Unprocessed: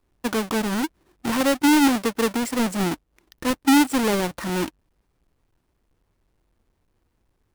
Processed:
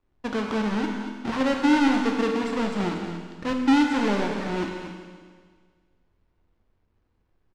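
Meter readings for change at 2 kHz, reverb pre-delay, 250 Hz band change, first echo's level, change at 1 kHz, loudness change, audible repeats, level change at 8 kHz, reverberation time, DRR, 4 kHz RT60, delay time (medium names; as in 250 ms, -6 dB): -2.5 dB, 11 ms, -2.0 dB, -10.0 dB, -2.0 dB, -2.5 dB, 1, -14.0 dB, 1.7 s, 1.0 dB, 1.7 s, 232 ms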